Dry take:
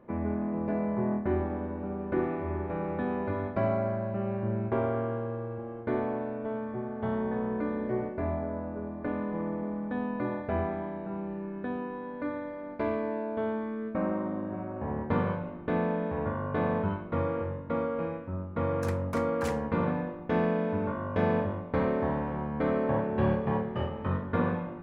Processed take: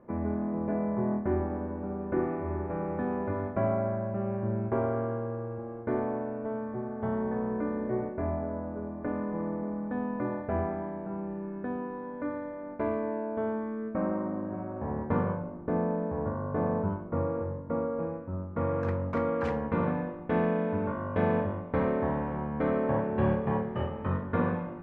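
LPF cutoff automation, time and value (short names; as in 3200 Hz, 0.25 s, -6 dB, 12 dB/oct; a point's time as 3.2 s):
15.11 s 1800 Hz
15.51 s 1100 Hz
18.13 s 1100 Hz
18.64 s 1900 Hz
19.32 s 2800 Hz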